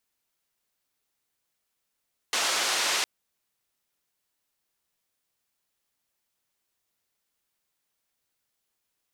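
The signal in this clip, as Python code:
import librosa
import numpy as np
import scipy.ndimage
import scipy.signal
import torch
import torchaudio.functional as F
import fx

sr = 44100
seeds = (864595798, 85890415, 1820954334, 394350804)

y = fx.band_noise(sr, seeds[0], length_s=0.71, low_hz=460.0, high_hz=6000.0, level_db=-26.5)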